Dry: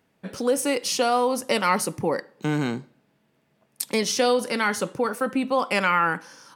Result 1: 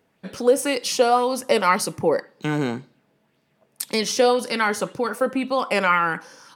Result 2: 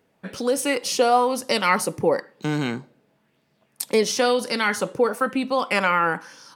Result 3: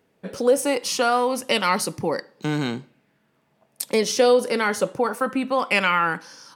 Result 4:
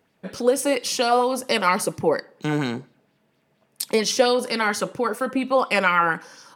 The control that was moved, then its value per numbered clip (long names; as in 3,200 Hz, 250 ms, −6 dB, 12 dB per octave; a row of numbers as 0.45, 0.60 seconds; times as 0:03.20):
auto-filter bell, speed: 1.9, 1, 0.23, 4.3 Hertz